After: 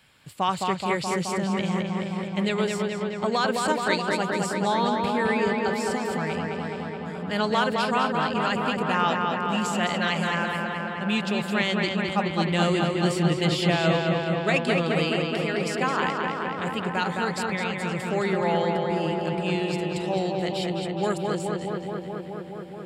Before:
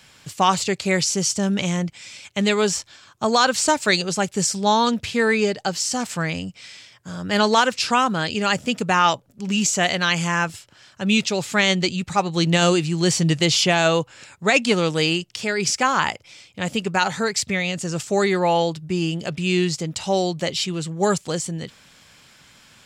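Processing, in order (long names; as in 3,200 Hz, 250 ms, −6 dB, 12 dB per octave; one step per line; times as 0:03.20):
parametric band 6,100 Hz −14.5 dB 0.5 octaves
feedback echo with a low-pass in the loop 213 ms, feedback 83%, low-pass 3,900 Hz, level −3 dB
level −7 dB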